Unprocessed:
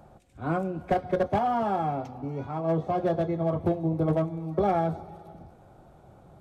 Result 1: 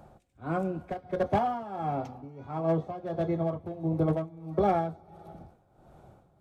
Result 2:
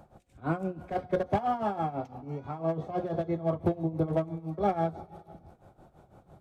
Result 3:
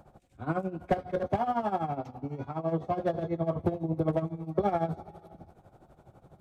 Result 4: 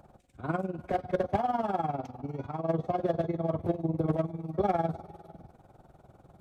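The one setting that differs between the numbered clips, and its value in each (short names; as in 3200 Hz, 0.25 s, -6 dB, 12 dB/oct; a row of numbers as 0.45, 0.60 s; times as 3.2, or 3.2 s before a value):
tremolo, rate: 1.5, 6, 12, 20 Hz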